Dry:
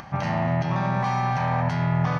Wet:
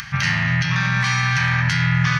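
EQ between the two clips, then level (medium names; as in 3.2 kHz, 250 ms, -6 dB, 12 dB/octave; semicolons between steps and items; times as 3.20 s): FFT filter 140 Hz 0 dB, 360 Hz -19 dB, 730 Hz -19 dB, 1.6 kHz +9 dB, 5.5 kHz +12 dB; +5.5 dB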